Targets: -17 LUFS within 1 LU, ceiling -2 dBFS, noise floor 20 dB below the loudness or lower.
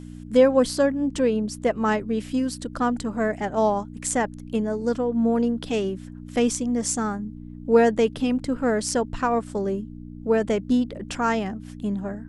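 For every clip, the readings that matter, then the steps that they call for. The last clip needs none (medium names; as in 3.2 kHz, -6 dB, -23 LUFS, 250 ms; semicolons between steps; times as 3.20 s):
hum 60 Hz; highest harmonic 300 Hz; hum level -37 dBFS; loudness -24.0 LUFS; peak level -5.5 dBFS; loudness target -17.0 LUFS
-> de-hum 60 Hz, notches 5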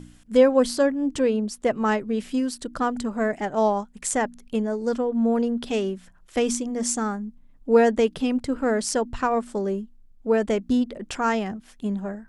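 hum not found; loudness -24.0 LUFS; peak level -6.0 dBFS; loudness target -17.0 LUFS
-> trim +7 dB; peak limiter -2 dBFS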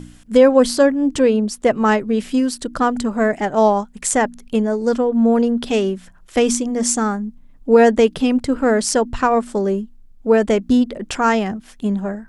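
loudness -17.5 LUFS; peak level -2.0 dBFS; noise floor -46 dBFS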